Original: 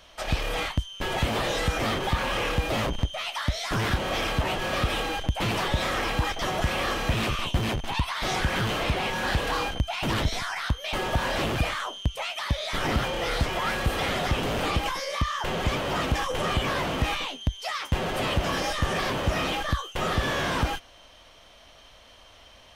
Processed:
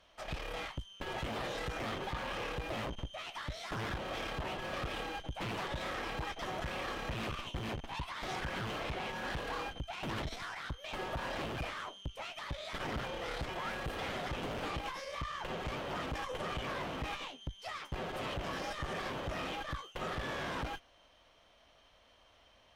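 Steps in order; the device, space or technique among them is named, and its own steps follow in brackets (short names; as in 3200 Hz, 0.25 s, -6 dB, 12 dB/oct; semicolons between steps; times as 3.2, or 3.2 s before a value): tube preamp driven hard (tube stage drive 25 dB, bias 0.75; low shelf 130 Hz -3.5 dB; high shelf 4200 Hz -8 dB); gain -6 dB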